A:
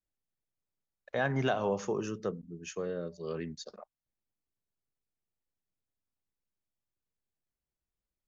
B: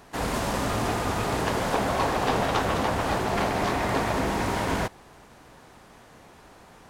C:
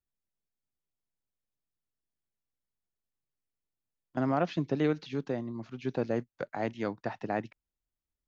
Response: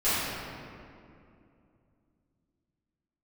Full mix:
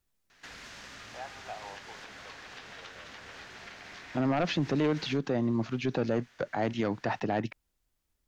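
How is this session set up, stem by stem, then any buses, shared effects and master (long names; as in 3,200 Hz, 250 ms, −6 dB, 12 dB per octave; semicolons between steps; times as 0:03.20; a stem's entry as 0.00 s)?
−3.0 dB, 0.00 s, no send, four-pole ladder band-pass 910 Hz, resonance 60%
−19.5 dB, 0.30 s, no send, flat-topped bell 3,100 Hz +15 dB 2.6 octaves; downward compressor 6 to 1, threshold −25 dBFS, peak gain reduction 12 dB
+2.5 dB, 0.00 s, no send, sine wavefolder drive 5 dB, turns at −15 dBFS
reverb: not used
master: brickwall limiter −21 dBFS, peak gain reduction 9 dB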